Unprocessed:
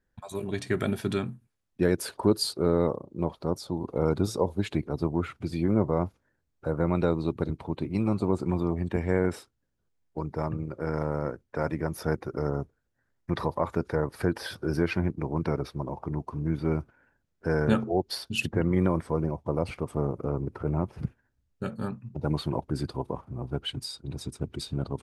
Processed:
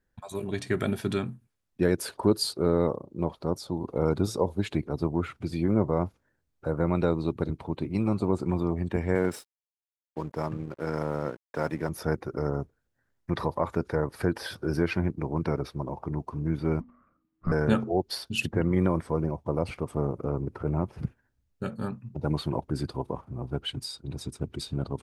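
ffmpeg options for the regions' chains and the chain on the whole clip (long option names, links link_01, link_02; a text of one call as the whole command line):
ffmpeg -i in.wav -filter_complex "[0:a]asettb=1/sr,asplit=3[link_01][link_02][link_03];[link_01]atrim=end=9.154[link_04];[link_02]atrim=start=9.15:end=11.89,asetpts=PTS-STARTPTS,afade=type=in:duration=0.004:curve=qsin,afade=type=out:start_time=2.736:duration=0.004:curve=qsin,highpass=110,highshelf=frequency=4500:gain=8,aeval=exprs='sgn(val(0))*max(abs(val(0))-0.00316,0)':channel_layout=same[link_05];[link_03]atrim=start=11.886[link_06];[link_04][link_05]acrossfade=duration=0.004:curve1=hsin:curve2=qsin[link_07];[link_07][link_06]acrossfade=duration=0.004:curve1=qsin:curve2=hsin,asettb=1/sr,asplit=3[link_08][link_09][link_10];[link_08]atrim=end=16.804[link_11];[link_09]atrim=start=16.8:end=17.52,asetpts=PTS-STARTPTS,afade=type=in:duration=0.004:curve=qsin,afade=type=out:start_time=0.716:duration=0.004:curve=qsin,lowpass=2500,afreqshift=-320,bandreject=frequency=243.8:width_type=h:width=4,bandreject=frequency=487.6:width_type=h:width=4,bandreject=frequency=731.4:width_type=h:width=4,bandreject=frequency=975.2:width_type=h:width=4,bandreject=frequency=1219:width_type=h:width=4,bandreject=frequency=1462.8:width_type=h:width=4,bandreject=frequency=1706.6:width_type=h:width=4,bandreject=frequency=1950.4:width_type=h:width=4,bandreject=frequency=2194.2:width_type=h:width=4,bandreject=frequency=2438:width_type=h:width=4,bandreject=frequency=2681.8:width_type=h:width=4,bandreject=frequency=2925.6:width_type=h:width=4,bandreject=frequency=3169.4:width_type=h:width=4,bandreject=frequency=3413.2:width_type=h:width=4,bandreject=frequency=3657:width_type=h:width=4,bandreject=frequency=3900.8:width_type=h:width=4,bandreject=frequency=4144.6:width_type=h:width=4,bandreject=frequency=4388.4:width_type=h:width=4,bandreject=frequency=4632.2:width_type=h:width=4,bandreject=frequency=4876:width_type=h:width=4,bandreject=frequency=5119.8:width_type=h:width=4,bandreject=frequency=5363.6:width_type=h:width=4,bandreject=frequency=5607.4:width_type=h:width=4,bandreject=frequency=5851.2:width_type=h:width=4,bandreject=frequency=6095:width_type=h:width=4,bandreject=frequency=6338.8:width_type=h:width=4,bandreject=frequency=6582.6:width_type=h:width=4[link_12];[link_10]atrim=start=17.516[link_13];[link_11][link_12]acrossfade=duration=0.004:curve1=hsin:curve2=qsin[link_14];[link_14][link_13]acrossfade=duration=0.004:curve1=qsin:curve2=hsin" out.wav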